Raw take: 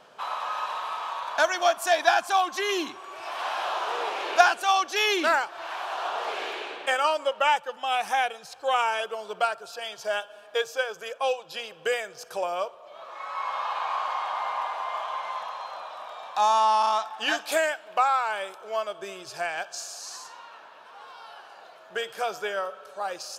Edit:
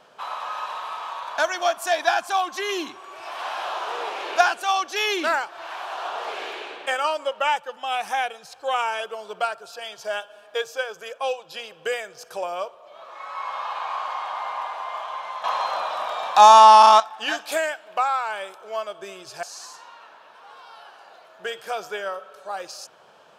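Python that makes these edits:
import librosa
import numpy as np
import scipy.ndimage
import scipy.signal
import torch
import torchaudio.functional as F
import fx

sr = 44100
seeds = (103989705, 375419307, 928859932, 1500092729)

y = fx.edit(x, sr, fx.clip_gain(start_s=15.44, length_s=1.56, db=11.5),
    fx.cut(start_s=19.43, length_s=0.51), tone=tone)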